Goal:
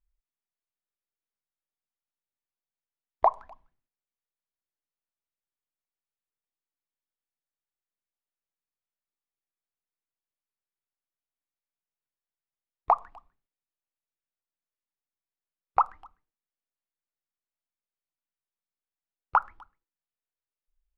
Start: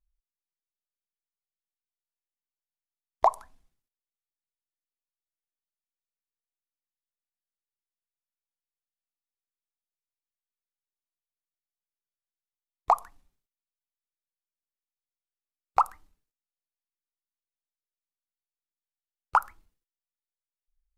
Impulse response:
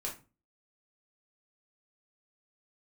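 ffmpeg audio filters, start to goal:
-filter_complex "[0:a]lowpass=2300,asplit=2[link_01][link_02];[link_02]adelay=250,highpass=300,lowpass=3400,asoftclip=type=hard:threshold=-13.5dB,volume=-28dB[link_03];[link_01][link_03]amix=inputs=2:normalize=0"

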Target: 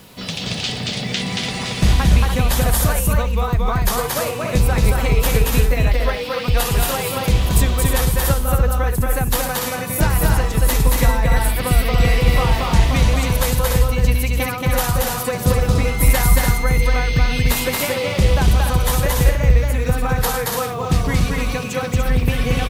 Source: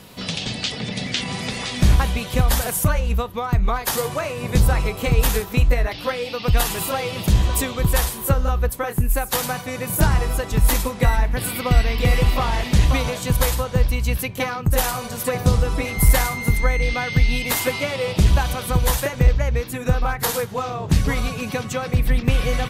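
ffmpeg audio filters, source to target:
ffmpeg -i in.wav -af "acrusher=bits=7:mix=0:aa=0.5,aecho=1:1:227.4|291.5:0.794|0.501" out.wav

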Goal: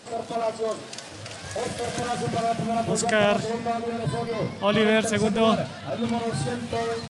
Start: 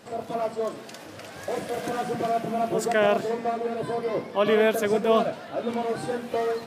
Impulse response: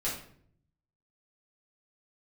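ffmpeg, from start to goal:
-filter_complex "[0:a]asubboost=boost=9.5:cutoff=120,acrossover=split=3000[link_01][link_02];[link_02]acontrast=73[link_03];[link_01][link_03]amix=inputs=2:normalize=0,atempo=0.94,aresample=22050,aresample=44100,volume=1.5dB"

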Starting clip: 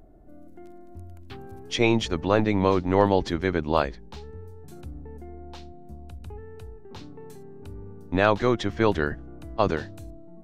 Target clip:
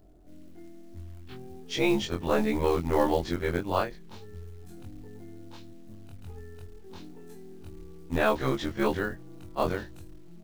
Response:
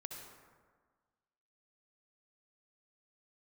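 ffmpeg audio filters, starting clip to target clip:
-af "afftfilt=real='re':imag='-im':win_size=2048:overlap=0.75,acrusher=bits=6:mode=log:mix=0:aa=0.000001"

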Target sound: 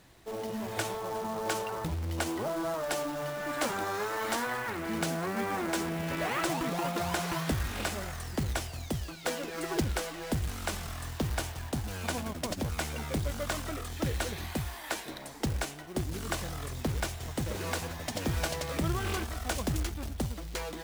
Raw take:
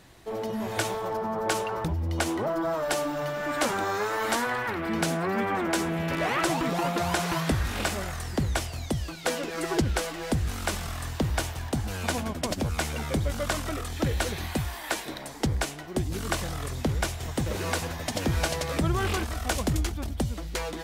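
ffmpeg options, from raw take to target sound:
ffmpeg -i in.wav -af "bandreject=frequency=387.3:width_type=h:width=4,bandreject=frequency=774.6:width_type=h:width=4,bandreject=frequency=1161.9:width_type=h:width=4,bandreject=frequency=1549.2:width_type=h:width=4,bandreject=frequency=1936.5:width_type=h:width=4,bandreject=frequency=2323.8:width_type=h:width=4,bandreject=frequency=2711.1:width_type=h:width=4,bandreject=frequency=3098.4:width_type=h:width=4,bandreject=frequency=3485.7:width_type=h:width=4,bandreject=frequency=3873:width_type=h:width=4,bandreject=frequency=4260.3:width_type=h:width=4,bandreject=frequency=4647.6:width_type=h:width=4,bandreject=frequency=5034.9:width_type=h:width=4,bandreject=frequency=5422.2:width_type=h:width=4,bandreject=frequency=5809.5:width_type=h:width=4,bandreject=frequency=6196.8:width_type=h:width=4,bandreject=frequency=6584.1:width_type=h:width=4,bandreject=frequency=6971.4:width_type=h:width=4,bandreject=frequency=7358.7:width_type=h:width=4,bandreject=frequency=7746:width_type=h:width=4,bandreject=frequency=8133.3:width_type=h:width=4,bandreject=frequency=8520.6:width_type=h:width=4,bandreject=frequency=8907.9:width_type=h:width=4,bandreject=frequency=9295.2:width_type=h:width=4,bandreject=frequency=9682.5:width_type=h:width=4,bandreject=frequency=10069.8:width_type=h:width=4,bandreject=frequency=10457.1:width_type=h:width=4,bandreject=frequency=10844.4:width_type=h:width=4,bandreject=frequency=11231.7:width_type=h:width=4,bandreject=frequency=11619:width_type=h:width=4,bandreject=frequency=12006.3:width_type=h:width=4,bandreject=frequency=12393.6:width_type=h:width=4,bandreject=frequency=12780.9:width_type=h:width=4,bandreject=frequency=13168.2:width_type=h:width=4,bandreject=frequency=13555.5:width_type=h:width=4,bandreject=frequency=13942.8:width_type=h:width=4,bandreject=frequency=14330.1:width_type=h:width=4,bandreject=frequency=14717.4:width_type=h:width=4,bandreject=frequency=15104.7:width_type=h:width=4,acrusher=bits=3:mode=log:mix=0:aa=0.000001,volume=-5dB" out.wav

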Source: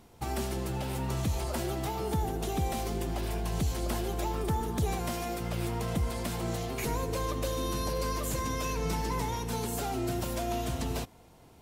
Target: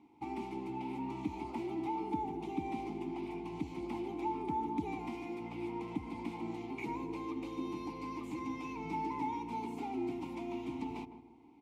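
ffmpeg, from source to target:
ffmpeg -i in.wav -filter_complex "[0:a]asplit=3[link_01][link_02][link_03];[link_01]bandpass=frequency=300:width_type=q:width=8,volume=0dB[link_04];[link_02]bandpass=frequency=870:width_type=q:width=8,volume=-6dB[link_05];[link_03]bandpass=frequency=2240:width_type=q:width=8,volume=-9dB[link_06];[link_04][link_05][link_06]amix=inputs=3:normalize=0,asplit=2[link_07][link_08];[link_08]adelay=158,lowpass=frequency=860:poles=1,volume=-9dB,asplit=2[link_09][link_10];[link_10]adelay=158,lowpass=frequency=860:poles=1,volume=0.39,asplit=2[link_11][link_12];[link_12]adelay=158,lowpass=frequency=860:poles=1,volume=0.39,asplit=2[link_13][link_14];[link_14]adelay=158,lowpass=frequency=860:poles=1,volume=0.39[link_15];[link_07][link_09][link_11][link_13][link_15]amix=inputs=5:normalize=0,volume=6.5dB" out.wav

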